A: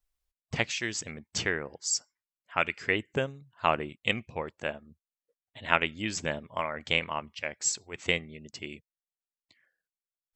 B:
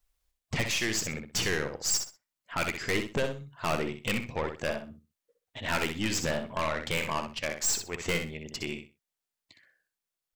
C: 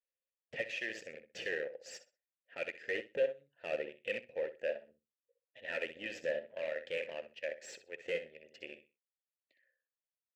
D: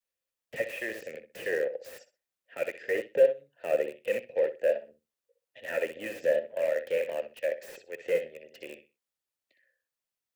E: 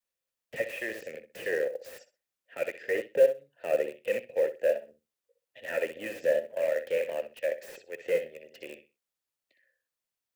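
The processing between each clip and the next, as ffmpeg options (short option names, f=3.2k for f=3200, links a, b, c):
-filter_complex "[0:a]aeval=exprs='(tanh(39.8*val(0)+0.45)-tanh(0.45))/39.8':c=same,asplit=2[a][b];[b]aecho=0:1:63|126|189:0.447|0.0983|0.0216[c];[a][c]amix=inputs=2:normalize=0,volume=7.5dB"
-filter_complex "[0:a]aeval=exprs='0.133*(cos(1*acos(clip(val(0)/0.133,-1,1)))-cos(1*PI/2))+0.0211*(cos(2*acos(clip(val(0)/0.133,-1,1)))-cos(2*PI/2))+0.0119*(cos(6*acos(clip(val(0)/0.133,-1,1)))-cos(6*PI/2))+0.0119*(cos(7*acos(clip(val(0)/0.133,-1,1)))-cos(7*PI/2))':c=same,asplit=3[a][b][c];[a]bandpass=f=530:t=q:w=8,volume=0dB[d];[b]bandpass=f=1.84k:t=q:w=8,volume=-6dB[e];[c]bandpass=f=2.48k:t=q:w=8,volume=-9dB[f];[d][e][f]amix=inputs=3:normalize=0,volume=5dB"
-filter_complex "[0:a]adynamicequalizer=threshold=0.00398:dfrequency=550:dqfactor=1.1:tfrequency=550:tqfactor=1.1:attack=5:release=100:ratio=0.375:range=3:mode=boostabove:tftype=bell,acrossover=split=160|360|2700[a][b][c][d];[d]aeval=exprs='(mod(376*val(0)+1,2)-1)/376':c=same[e];[a][b][c][e]amix=inputs=4:normalize=0,volume=5dB"
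-af "acrusher=bits=8:mode=log:mix=0:aa=0.000001"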